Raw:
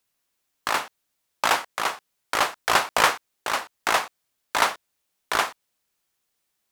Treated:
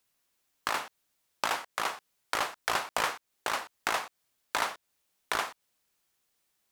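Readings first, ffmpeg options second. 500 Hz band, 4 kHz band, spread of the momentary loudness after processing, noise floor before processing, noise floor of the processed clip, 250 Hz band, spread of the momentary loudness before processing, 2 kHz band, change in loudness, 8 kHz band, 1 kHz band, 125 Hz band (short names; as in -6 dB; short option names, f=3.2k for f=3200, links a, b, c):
-8.5 dB, -8.5 dB, 8 LU, -77 dBFS, -79 dBFS, -8.0 dB, 12 LU, -8.0 dB, -8.5 dB, -8.0 dB, -8.5 dB, -8.0 dB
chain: -af "acompressor=threshold=-29dB:ratio=3"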